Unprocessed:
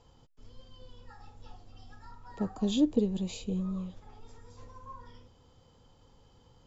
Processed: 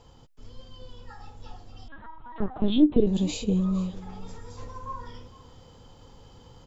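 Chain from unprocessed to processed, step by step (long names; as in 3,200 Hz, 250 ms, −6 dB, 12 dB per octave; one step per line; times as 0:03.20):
speech leveller 2 s
on a send: single-tap delay 456 ms −19.5 dB
0:01.88–0:03.07: on the sum: linear-prediction vocoder at 8 kHz pitch kept
level +7.5 dB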